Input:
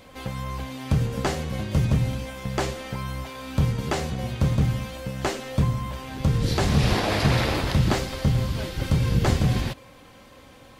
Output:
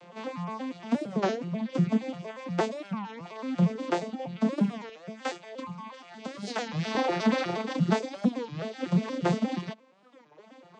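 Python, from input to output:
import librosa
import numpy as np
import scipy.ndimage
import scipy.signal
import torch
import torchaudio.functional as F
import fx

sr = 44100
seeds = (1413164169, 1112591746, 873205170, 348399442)

y = fx.vocoder_arp(x, sr, chord='major triad', root=53, every_ms=118)
y = fx.dereverb_blind(y, sr, rt60_s=1.7)
y = fx.highpass(y, sr, hz=fx.steps((0.0, 390.0), (4.91, 1400.0), (6.95, 440.0)), slope=6)
y = fx.record_warp(y, sr, rpm=33.33, depth_cents=250.0)
y = F.gain(torch.from_numpy(y), 5.0).numpy()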